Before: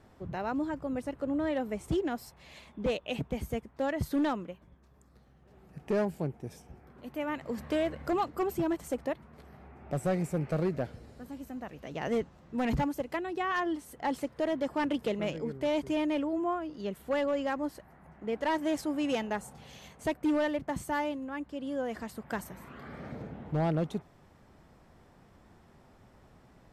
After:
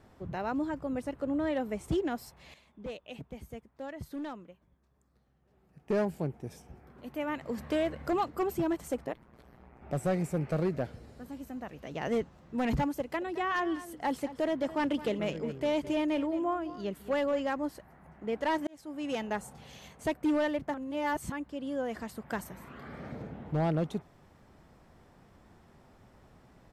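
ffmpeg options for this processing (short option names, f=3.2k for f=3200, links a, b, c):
-filter_complex "[0:a]asplit=3[a][b][c];[a]afade=t=out:st=9.04:d=0.02[d];[b]tremolo=f=120:d=0.974,afade=t=in:st=9.04:d=0.02,afade=t=out:st=9.81:d=0.02[e];[c]afade=t=in:st=9.81:d=0.02[f];[d][e][f]amix=inputs=3:normalize=0,asplit=3[g][h][i];[g]afade=t=out:st=13.2:d=0.02[j];[h]aecho=1:1:216:0.178,afade=t=in:st=13.2:d=0.02,afade=t=out:st=17.39:d=0.02[k];[i]afade=t=in:st=17.39:d=0.02[l];[j][k][l]amix=inputs=3:normalize=0,asplit=6[m][n][o][p][q][r];[m]atrim=end=2.542[s];[n]atrim=start=2.538:end=5.902,asetpts=PTS-STARTPTS,volume=-10dB[t];[o]atrim=start=5.898:end=18.67,asetpts=PTS-STARTPTS,afade=t=out:st=12.768:d=0.004:c=hsin[u];[p]atrim=start=18.67:end=20.742,asetpts=PTS-STARTPTS,afade=t=in:d=0.67[v];[q]atrim=start=20.738:end=21.322,asetpts=PTS-STARTPTS,areverse[w];[r]atrim=start=21.318[x];[s][t]acrossfade=d=0.004:c1=hsin:c2=hsin[y];[u][v]concat=n=2:v=0:a=1[z];[y][z]acrossfade=d=0.004:c1=hsin:c2=hsin[aa];[aa][w]acrossfade=d=0.004:c1=hsin:c2=hsin[ab];[ab][x]acrossfade=d=0.004:c1=hsin:c2=hsin"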